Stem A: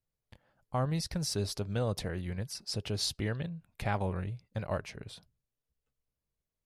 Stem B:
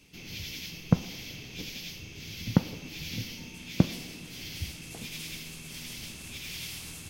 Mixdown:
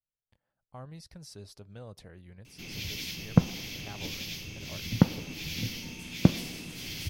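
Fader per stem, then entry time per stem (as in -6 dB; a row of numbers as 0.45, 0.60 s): -14.0, +2.0 dB; 0.00, 2.45 s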